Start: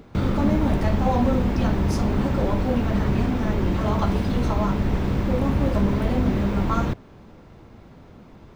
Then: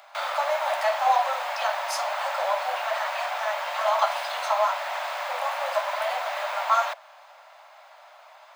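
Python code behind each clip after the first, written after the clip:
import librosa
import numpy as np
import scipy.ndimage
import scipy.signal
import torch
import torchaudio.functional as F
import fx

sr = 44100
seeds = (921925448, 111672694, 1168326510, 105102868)

y = scipy.signal.sosfilt(scipy.signal.butter(16, 590.0, 'highpass', fs=sr, output='sos'), x)
y = fx.notch(y, sr, hz=5700.0, q=19.0)
y = y * librosa.db_to_amplitude(6.0)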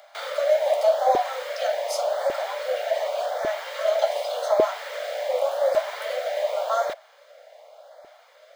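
y = fx.filter_lfo_notch(x, sr, shape='saw_up', hz=0.87, low_hz=420.0, high_hz=3000.0, q=1.4)
y = fx.low_shelf_res(y, sr, hz=650.0, db=13.5, q=3.0)
y = fx.notch(y, sr, hz=2600.0, q=7.6)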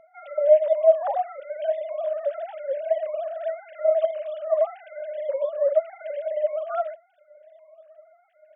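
y = fx.sine_speech(x, sr)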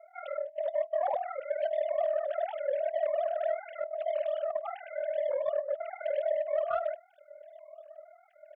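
y = fx.over_compress(x, sr, threshold_db=-26.0, ratio=-0.5)
y = 10.0 ** (-17.5 / 20.0) * np.tanh(y / 10.0 ** (-17.5 / 20.0))
y = y * np.sin(2.0 * np.pi * 20.0 * np.arange(len(y)) / sr)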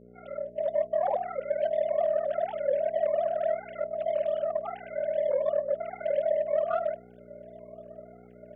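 y = fx.fade_in_head(x, sr, length_s=0.61)
y = fx.dmg_buzz(y, sr, base_hz=60.0, harmonics=10, level_db=-60.0, tilt_db=-2, odd_only=False)
y = fx.small_body(y, sr, hz=(210.0, 410.0), ring_ms=45, db=14)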